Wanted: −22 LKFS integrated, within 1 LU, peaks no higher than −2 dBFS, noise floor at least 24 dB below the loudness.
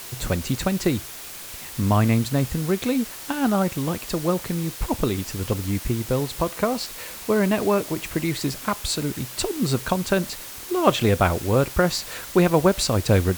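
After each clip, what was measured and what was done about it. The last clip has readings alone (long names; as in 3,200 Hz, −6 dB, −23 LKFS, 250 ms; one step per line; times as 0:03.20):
background noise floor −38 dBFS; target noise floor −48 dBFS; integrated loudness −23.5 LKFS; sample peak −2.5 dBFS; target loudness −22.0 LKFS
→ noise reduction from a noise print 10 dB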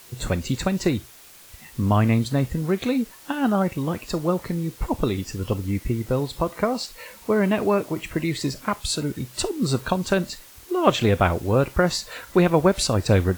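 background noise floor −47 dBFS; target noise floor −48 dBFS
→ noise reduction from a noise print 6 dB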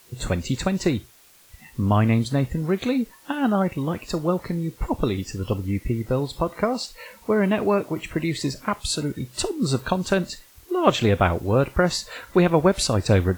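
background noise floor −52 dBFS; integrated loudness −23.5 LKFS; sample peak −2.5 dBFS; target loudness −22.0 LKFS
→ level +1.5 dB
brickwall limiter −2 dBFS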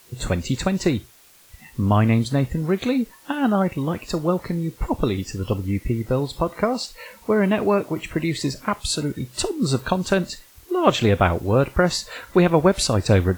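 integrated loudness −22.0 LKFS; sample peak −2.0 dBFS; background noise floor −51 dBFS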